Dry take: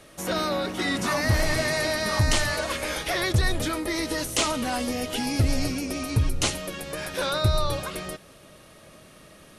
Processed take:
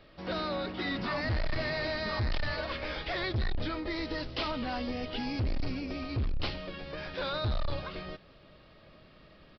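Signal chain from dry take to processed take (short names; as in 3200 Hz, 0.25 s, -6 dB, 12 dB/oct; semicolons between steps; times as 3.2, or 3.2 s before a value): low shelf 62 Hz +10.5 dB; hard clip -20 dBFS, distortion -7 dB; downsampling 11025 Hz; gain -7 dB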